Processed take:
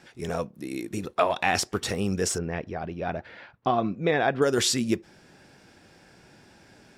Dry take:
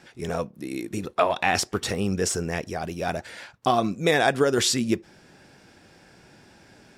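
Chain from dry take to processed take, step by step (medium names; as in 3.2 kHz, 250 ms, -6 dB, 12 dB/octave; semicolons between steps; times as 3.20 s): 2.38–4.42 s: distance through air 320 m; trim -1.5 dB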